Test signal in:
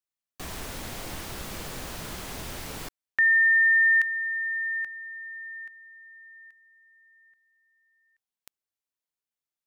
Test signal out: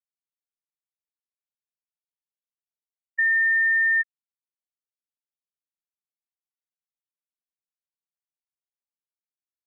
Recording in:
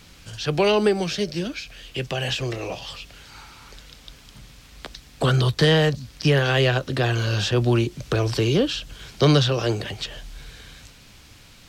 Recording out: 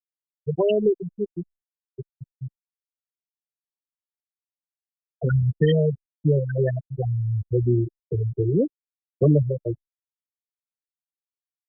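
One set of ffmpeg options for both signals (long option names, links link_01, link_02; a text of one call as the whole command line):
ffmpeg -i in.wav -af "afftfilt=real='re*gte(hypot(re,im),0.501)':imag='im*gte(hypot(re,im),0.501)':win_size=1024:overlap=0.75" -ar 48000 -c:a libopus -b:a 64k out.opus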